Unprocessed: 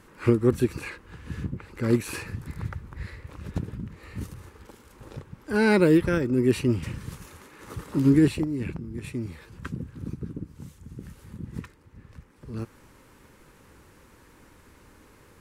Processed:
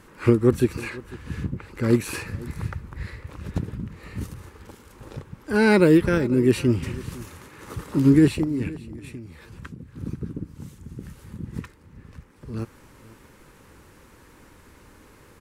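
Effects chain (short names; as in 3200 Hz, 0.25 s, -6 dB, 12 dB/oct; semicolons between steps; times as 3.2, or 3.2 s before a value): 8.68–9.98 compressor 10:1, threshold -38 dBFS, peak gain reduction 11.5 dB; echo 0.499 s -20 dB; gain +3 dB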